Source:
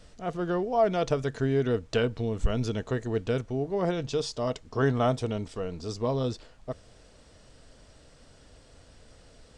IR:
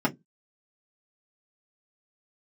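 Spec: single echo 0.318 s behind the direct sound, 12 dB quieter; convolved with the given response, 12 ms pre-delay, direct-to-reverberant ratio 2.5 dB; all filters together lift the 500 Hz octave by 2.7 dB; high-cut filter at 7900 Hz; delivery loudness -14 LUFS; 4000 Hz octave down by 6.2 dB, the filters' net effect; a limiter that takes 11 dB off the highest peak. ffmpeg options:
-filter_complex "[0:a]lowpass=7.9k,equalizer=f=500:t=o:g=3.5,equalizer=f=4k:t=o:g=-8.5,alimiter=limit=-23dB:level=0:latency=1,aecho=1:1:318:0.251,asplit=2[a][b];[1:a]atrim=start_sample=2205,adelay=12[c];[b][c]afir=irnorm=-1:irlink=0,volume=-14.5dB[d];[a][d]amix=inputs=2:normalize=0,volume=13.5dB"

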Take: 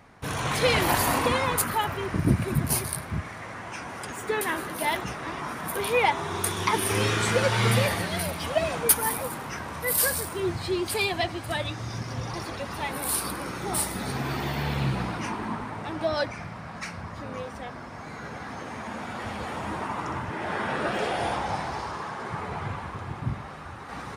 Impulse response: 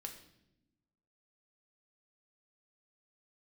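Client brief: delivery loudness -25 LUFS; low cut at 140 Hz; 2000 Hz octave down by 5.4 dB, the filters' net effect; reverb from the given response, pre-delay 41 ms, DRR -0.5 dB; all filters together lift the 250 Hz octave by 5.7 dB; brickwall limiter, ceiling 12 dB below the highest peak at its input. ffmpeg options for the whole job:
-filter_complex "[0:a]highpass=140,equalizer=f=250:t=o:g=8.5,equalizer=f=2k:t=o:g=-7,alimiter=limit=-17dB:level=0:latency=1,asplit=2[a][b];[1:a]atrim=start_sample=2205,adelay=41[c];[b][c]afir=irnorm=-1:irlink=0,volume=4dB[d];[a][d]amix=inputs=2:normalize=0,volume=1dB"

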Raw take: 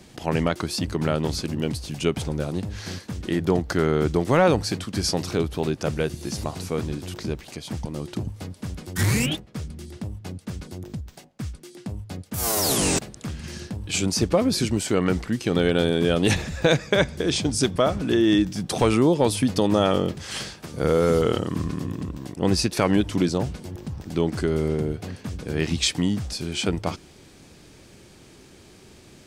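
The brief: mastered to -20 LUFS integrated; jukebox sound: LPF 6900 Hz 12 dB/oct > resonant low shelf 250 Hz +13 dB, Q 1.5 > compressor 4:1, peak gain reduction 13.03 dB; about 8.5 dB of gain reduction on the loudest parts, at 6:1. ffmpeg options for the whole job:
-af "acompressor=threshold=-24dB:ratio=6,lowpass=6.9k,lowshelf=f=250:t=q:w=1.5:g=13,acompressor=threshold=-25dB:ratio=4,volume=8.5dB"

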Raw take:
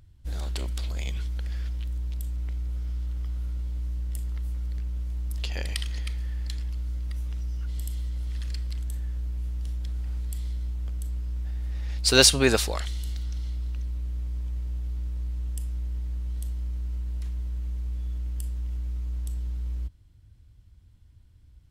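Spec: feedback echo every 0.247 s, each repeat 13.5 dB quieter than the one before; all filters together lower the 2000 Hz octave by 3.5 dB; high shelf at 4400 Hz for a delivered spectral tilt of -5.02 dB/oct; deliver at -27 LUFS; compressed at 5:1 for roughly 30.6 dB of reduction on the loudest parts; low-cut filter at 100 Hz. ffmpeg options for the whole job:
-af "highpass=100,equalizer=f=2k:t=o:g=-4,highshelf=f=4.4k:g=-5,acompressor=threshold=-51dB:ratio=5,aecho=1:1:247|494:0.211|0.0444,volume=26.5dB"

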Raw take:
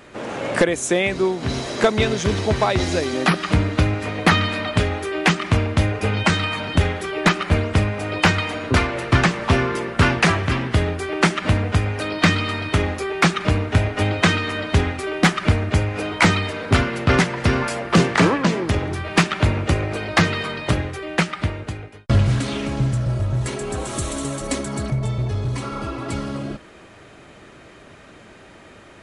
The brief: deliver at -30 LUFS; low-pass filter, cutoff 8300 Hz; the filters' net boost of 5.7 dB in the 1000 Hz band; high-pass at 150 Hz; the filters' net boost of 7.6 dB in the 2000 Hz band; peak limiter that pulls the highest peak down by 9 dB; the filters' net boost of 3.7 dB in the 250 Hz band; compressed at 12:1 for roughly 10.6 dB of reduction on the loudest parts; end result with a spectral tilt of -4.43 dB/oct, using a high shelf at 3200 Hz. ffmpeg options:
-af "highpass=150,lowpass=8.3k,equalizer=f=250:t=o:g=6,equalizer=f=1k:t=o:g=4.5,equalizer=f=2k:t=o:g=6.5,highshelf=f=3.2k:g=4.5,acompressor=threshold=-16dB:ratio=12,volume=-7.5dB,alimiter=limit=-18dB:level=0:latency=1"

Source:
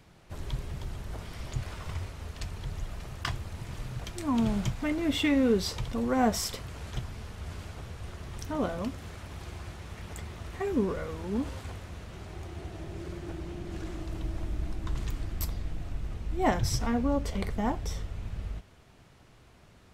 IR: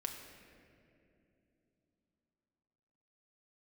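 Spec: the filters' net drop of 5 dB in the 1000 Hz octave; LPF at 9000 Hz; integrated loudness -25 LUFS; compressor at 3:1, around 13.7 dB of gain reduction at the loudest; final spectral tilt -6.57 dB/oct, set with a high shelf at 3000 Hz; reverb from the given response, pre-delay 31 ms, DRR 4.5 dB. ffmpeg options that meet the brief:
-filter_complex "[0:a]lowpass=9k,equalizer=f=1k:t=o:g=-6.5,highshelf=f=3k:g=-7,acompressor=threshold=-41dB:ratio=3,asplit=2[a][b];[1:a]atrim=start_sample=2205,adelay=31[c];[b][c]afir=irnorm=-1:irlink=0,volume=-4dB[d];[a][d]amix=inputs=2:normalize=0,volume=18dB"

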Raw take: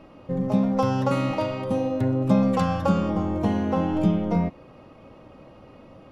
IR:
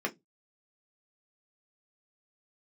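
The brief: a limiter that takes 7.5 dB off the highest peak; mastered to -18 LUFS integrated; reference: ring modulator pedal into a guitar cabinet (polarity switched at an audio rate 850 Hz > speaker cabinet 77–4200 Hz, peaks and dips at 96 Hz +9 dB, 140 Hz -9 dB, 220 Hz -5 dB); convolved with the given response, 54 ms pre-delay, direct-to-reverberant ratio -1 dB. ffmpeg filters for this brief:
-filter_complex "[0:a]alimiter=limit=-16dB:level=0:latency=1,asplit=2[a][b];[1:a]atrim=start_sample=2205,adelay=54[c];[b][c]afir=irnorm=-1:irlink=0,volume=-5.5dB[d];[a][d]amix=inputs=2:normalize=0,aeval=exprs='val(0)*sgn(sin(2*PI*850*n/s))':c=same,highpass=77,equalizer=f=96:t=q:w=4:g=9,equalizer=f=140:t=q:w=4:g=-9,equalizer=f=220:t=q:w=4:g=-5,lowpass=f=4.2k:w=0.5412,lowpass=f=4.2k:w=1.3066,volume=3.5dB"

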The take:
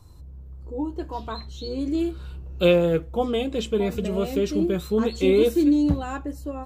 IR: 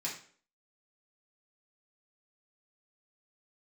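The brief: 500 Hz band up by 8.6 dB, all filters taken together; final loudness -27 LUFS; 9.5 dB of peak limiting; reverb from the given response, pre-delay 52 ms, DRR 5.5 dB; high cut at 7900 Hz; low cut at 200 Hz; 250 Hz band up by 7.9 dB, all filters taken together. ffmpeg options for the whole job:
-filter_complex "[0:a]highpass=200,lowpass=7.9k,equalizer=f=250:t=o:g=9,equalizer=f=500:t=o:g=7.5,alimiter=limit=-10dB:level=0:latency=1,asplit=2[a][b];[1:a]atrim=start_sample=2205,adelay=52[c];[b][c]afir=irnorm=-1:irlink=0,volume=-8dB[d];[a][d]amix=inputs=2:normalize=0,volume=-8.5dB"

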